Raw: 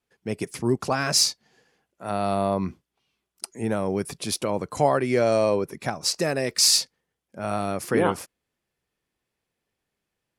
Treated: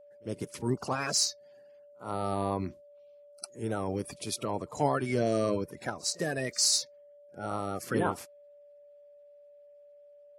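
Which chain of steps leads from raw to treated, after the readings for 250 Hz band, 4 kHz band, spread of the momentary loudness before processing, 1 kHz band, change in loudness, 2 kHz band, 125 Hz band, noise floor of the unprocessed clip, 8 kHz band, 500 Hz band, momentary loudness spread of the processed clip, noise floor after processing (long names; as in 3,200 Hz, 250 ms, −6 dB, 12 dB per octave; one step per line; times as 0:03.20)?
−6.0 dB, −8.0 dB, 14 LU, −6.5 dB, −7.0 dB, −6.5 dB, −5.0 dB, −83 dBFS, −6.0 dB, −8.0 dB, 15 LU, −56 dBFS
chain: spectral magnitudes quantised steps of 30 dB
echo ahead of the sound 52 ms −23 dB
steady tone 580 Hz −46 dBFS
level −6.5 dB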